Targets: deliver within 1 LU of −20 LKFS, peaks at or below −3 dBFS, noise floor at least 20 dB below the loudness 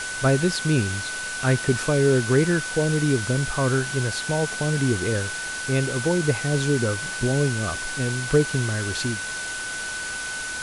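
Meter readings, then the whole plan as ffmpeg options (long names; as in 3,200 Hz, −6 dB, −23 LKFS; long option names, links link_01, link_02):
interfering tone 1,500 Hz; level of the tone −30 dBFS; background noise floor −31 dBFS; target noise floor −44 dBFS; integrated loudness −23.5 LKFS; sample peak −7.5 dBFS; target loudness −20.0 LKFS
→ -af "bandreject=frequency=1500:width=30"
-af "afftdn=noise_reduction=13:noise_floor=-31"
-af "volume=3.5dB"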